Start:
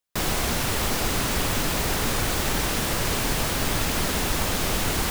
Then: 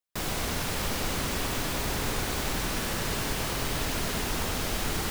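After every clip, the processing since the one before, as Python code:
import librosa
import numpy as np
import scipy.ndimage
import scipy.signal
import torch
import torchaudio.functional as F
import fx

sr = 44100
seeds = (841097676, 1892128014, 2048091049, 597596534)

y = fx.echo_bbd(x, sr, ms=97, stages=4096, feedback_pct=76, wet_db=-8.0)
y = y * 10.0 ** (-6.5 / 20.0)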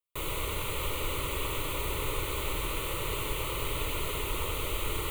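y = fx.fixed_phaser(x, sr, hz=1100.0, stages=8)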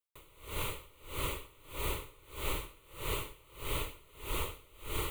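y = x * 10.0 ** (-28 * (0.5 - 0.5 * np.cos(2.0 * np.pi * 1.6 * np.arange(len(x)) / sr)) / 20.0)
y = y * 10.0 ** (-1.0 / 20.0)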